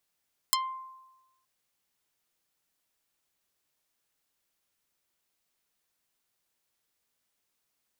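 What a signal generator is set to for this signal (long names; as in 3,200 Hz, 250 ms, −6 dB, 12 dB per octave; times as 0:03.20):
Karplus-Strong string C6, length 0.92 s, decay 1.07 s, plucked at 0.48, dark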